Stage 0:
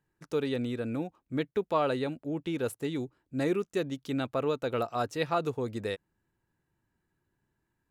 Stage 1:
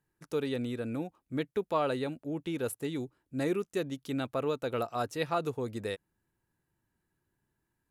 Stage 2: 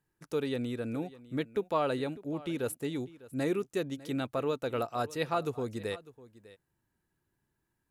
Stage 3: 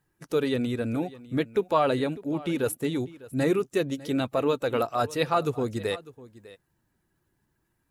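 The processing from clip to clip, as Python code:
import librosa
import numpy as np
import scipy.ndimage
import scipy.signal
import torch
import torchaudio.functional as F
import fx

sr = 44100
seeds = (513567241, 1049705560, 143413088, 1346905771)

y1 = fx.peak_eq(x, sr, hz=11000.0, db=7.0, octaves=0.68)
y1 = y1 * librosa.db_to_amplitude(-2.0)
y2 = y1 + 10.0 ** (-19.0 / 20.0) * np.pad(y1, (int(601 * sr / 1000.0), 0))[:len(y1)]
y3 = fx.spec_quant(y2, sr, step_db=15)
y3 = y3 * librosa.db_to_amplitude(7.0)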